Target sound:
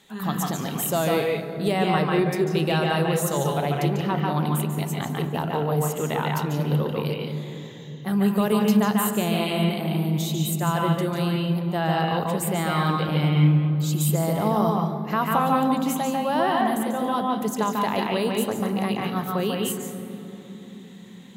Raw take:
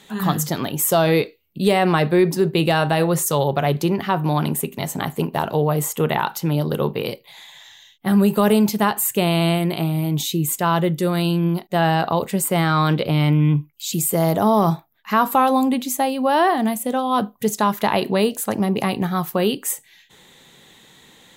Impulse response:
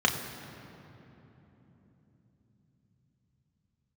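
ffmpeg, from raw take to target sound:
-filter_complex "[0:a]asplit=2[a][b];[b]highpass=f=140:p=1[c];[1:a]atrim=start_sample=2205,adelay=143[d];[c][d]afir=irnorm=-1:irlink=0,volume=-12.5dB[e];[a][e]amix=inputs=2:normalize=0,volume=-7.5dB"

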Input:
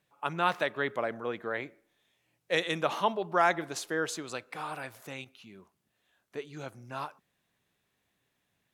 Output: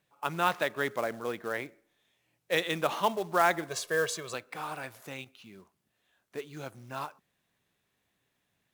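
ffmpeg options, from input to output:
-filter_complex "[0:a]asettb=1/sr,asplit=3[a][b][c];[a]atrim=end=3.694[d];[b]atrim=start=3.69:end=4.34,asetpts=PTS-STARTPTS,afade=t=in:d=0.004:c=qsin,afade=t=out:st=0.646:d=0.004:c=qsin,aecho=1:1:1.8:0.79,atrim=end_sample=28665[e];[c]atrim=start=4.336[f];[d][e]acrossfade=d=0.004:c1=hsin:c2=qsin[g];[g][f]acrossfade=d=0.004:c1=qsin:c2=hsin,acrusher=bits=4:mode=log:mix=0:aa=0.000001"

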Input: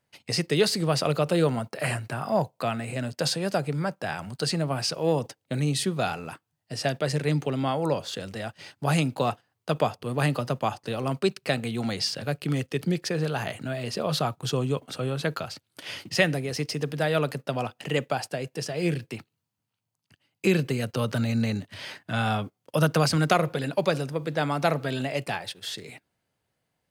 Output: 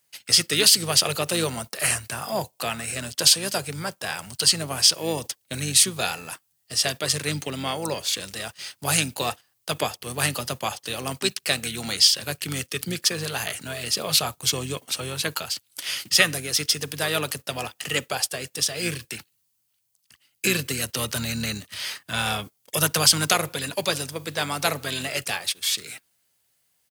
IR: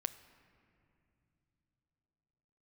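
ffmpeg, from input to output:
-filter_complex "[0:a]crystalizer=i=10:c=0,asplit=2[a][b];[b]asetrate=29433,aresample=44100,atempo=1.49831,volume=-11dB[c];[a][c]amix=inputs=2:normalize=0,volume=-6dB"

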